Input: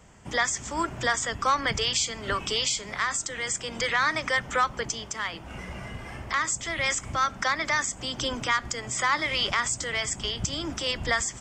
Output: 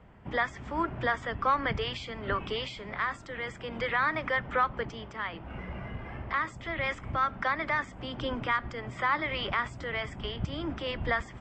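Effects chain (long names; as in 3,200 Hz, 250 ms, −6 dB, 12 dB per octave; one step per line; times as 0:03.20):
high-frequency loss of the air 450 metres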